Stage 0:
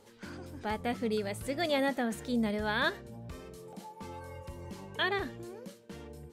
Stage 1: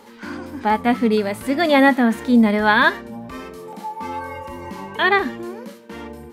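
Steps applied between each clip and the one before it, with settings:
octave-band graphic EQ 125/250/1,000/2,000/8,000 Hz −7/+10/+10/+6/−5 dB
harmonic and percussive parts rebalanced harmonic +9 dB
high-shelf EQ 3,100 Hz +8 dB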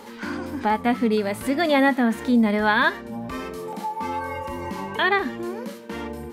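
downward compressor 1.5 to 1, threshold −35 dBFS, peak gain reduction 9 dB
level +4 dB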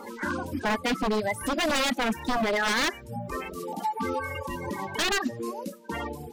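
spectral magnitudes quantised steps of 30 dB
reverb reduction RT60 1.7 s
wave folding −21.5 dBFS
level +1.5 dB

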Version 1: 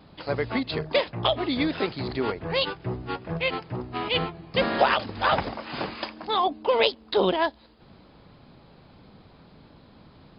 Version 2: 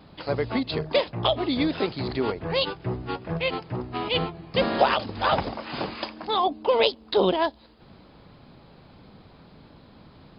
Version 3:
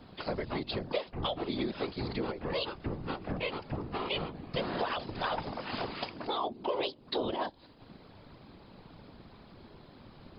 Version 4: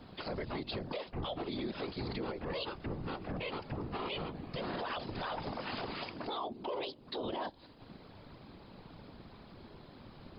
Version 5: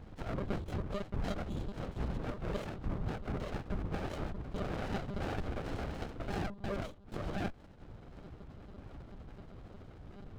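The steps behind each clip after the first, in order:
dynamic equaliser 1,800 Hz, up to −5 dB, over −39 dBFS, Q 1.2; level +1.5 dB
random phases in short frames; downward compressor 3 to 1, threshold −30 dBFS, peak gain reduction 12.5 dB; level −2.5 dB
brickwall limiter −29.5 dBFS, peak gain reduction 10 dB
phaser with its sweep stopped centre 890 Hz, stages 4; one-pitch LPC vocoder at 8 kHz 200 Hz; windowed peak hold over 33 samples; level +7.5 dB

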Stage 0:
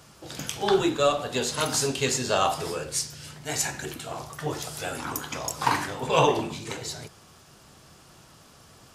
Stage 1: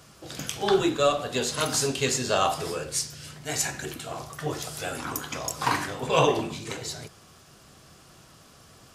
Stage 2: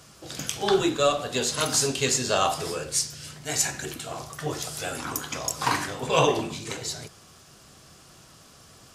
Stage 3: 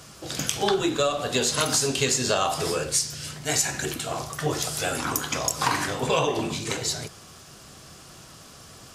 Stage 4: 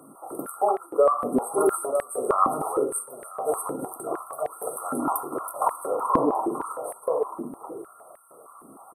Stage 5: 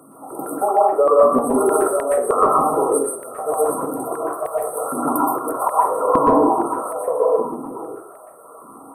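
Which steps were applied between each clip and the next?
notch filter 890 Hz, Q 12
parametric band 6,800 Hz +3.5 dB 1.7 octaves
downward compressor 12 to 1, threshold −24 dBFS, peak gain reduction 9.5 dB; level +5 dB
slap from a distant wall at 160 metres, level −6 dB; brick-wall band-stop 1,400–8,200 Hz; high-pass on a step sequencer 6.5 Hz 270–1,900 Hz; level −2 dB
dense smooth reverb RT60 0.54 s, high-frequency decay 0.45×, pre-delay 110 ms, DRR −3 dB; level +2.5 dB

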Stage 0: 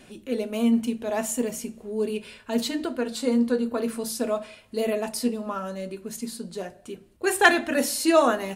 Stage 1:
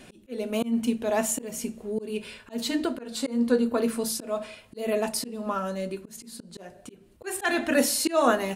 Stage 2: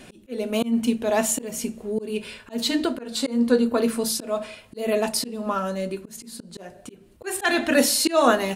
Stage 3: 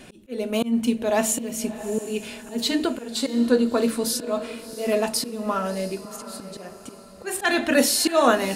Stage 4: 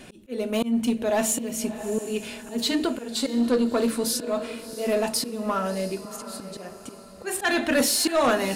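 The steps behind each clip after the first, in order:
volume swells 232 ms; level +2 dB
dynamic equaliser 3,900 Hz, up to +4 dB, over −43 dBFS, Q 1.5; level +3.5 dB
feedback delay with all-pass diffusion 677 ms, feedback 42%, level −14 dB
soft clipping −14.5 dBFS, distortion −15 dB

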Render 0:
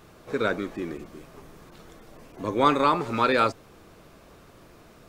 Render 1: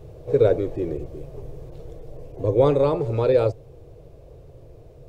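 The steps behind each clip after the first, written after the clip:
in parallel at +0.5 dB: speech leveller within 5 dB 2 s
on the sum: drawn EQ curve 140 Hz 0 dB, 200 Hz −22 dB, 490 Hz −2 dB, 1,300 Hz −28 dB, 2,600 Hz −22 dB
level +6.5 dB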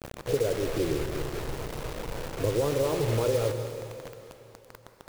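downward compressor 10 to 1, threshold −23 dBFS, peak gain reduction 11.5 dB
bit reduction 6 bits
on a send at −7 dB: convolution reverb RT60 2.8 s, pre-delay 118 ms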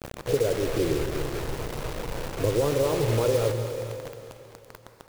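single-tap delay 451 ms −14.5 dB
level +2.5 dB

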